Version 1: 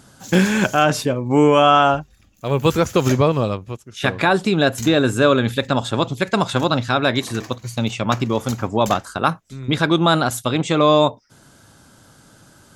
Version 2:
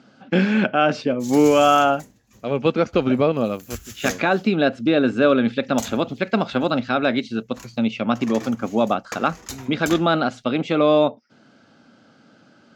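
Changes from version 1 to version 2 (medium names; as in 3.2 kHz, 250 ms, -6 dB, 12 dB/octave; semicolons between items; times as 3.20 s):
speech: add cabinet simulation 230–4300 Hz, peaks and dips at 230 Hz +7 dB, 380 Hz -3 dB, 990 Hz -10 dB, 1.8 kHz -5 dB, 3.6 kHz -7 dB; background: entry +1.00 s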